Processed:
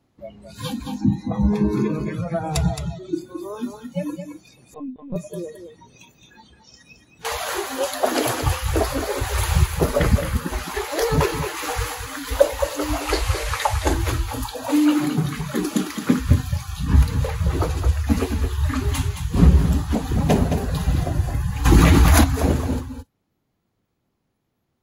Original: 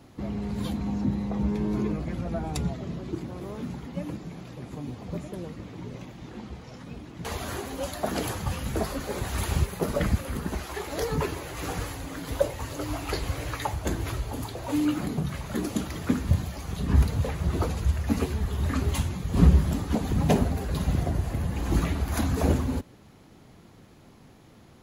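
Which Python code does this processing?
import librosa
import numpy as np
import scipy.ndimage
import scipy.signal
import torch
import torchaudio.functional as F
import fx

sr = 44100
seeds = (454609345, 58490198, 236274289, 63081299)

y = fx.delta_mod(x, sr, bps=64000, step_db=-37.0, at=(13.01, 13.93))
y = fx.noise_reduce_blind(y, sr, reduce_db=24)
y = fx.rider(y, sr, range_db=4, speed_s=2.0)
y = y + 10.0 ** (-8.0 / 20.0) * np.pad(y, (int(218 * sr / 1000.0), 0))[:len(y)]
y = fx.lpc_vocoder(y, sr, seeds[0], excitation='pitch_kept', order=16, at=(4.74, 5.16))
y = fx.env_flatten(y, sr, amount_pct=70, at=(21.64, 22.23), fade=0.02)
y = y * 10.0 ** (6.0 / 20.0)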